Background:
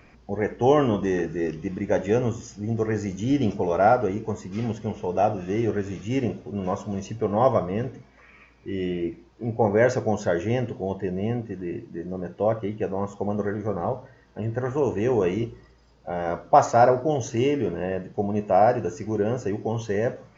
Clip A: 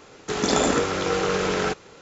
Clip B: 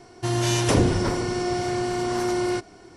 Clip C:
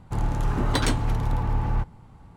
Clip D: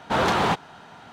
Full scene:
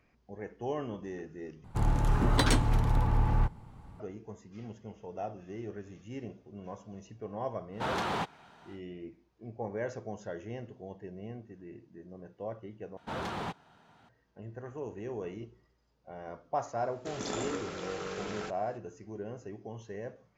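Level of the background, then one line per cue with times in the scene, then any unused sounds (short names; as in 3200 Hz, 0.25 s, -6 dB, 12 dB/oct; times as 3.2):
background -16.5 dB
1.64 replace with C -2 dB
7.7 add D -11 dB, fades 0.10 s
12.97 replace with D -16.5 dB + low shelf 260 Hz +5.5 dB
16.77 add A -15.5 dB
not used: B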